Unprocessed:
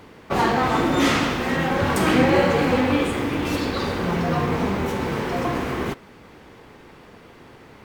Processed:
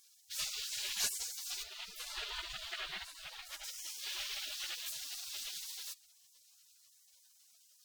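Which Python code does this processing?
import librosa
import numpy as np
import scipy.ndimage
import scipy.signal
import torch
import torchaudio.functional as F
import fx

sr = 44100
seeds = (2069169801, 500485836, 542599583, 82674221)

y = fx.spec_gate(x, sr, threshold_db=-30, keep='weak')
y = fx.bass_treble(y, sr, bass_db=4, treble_db=-13, at=(1.62, 3.63), fade=0.02)
y = F.gain(torch.from_numpy(y), 2.5).numpy()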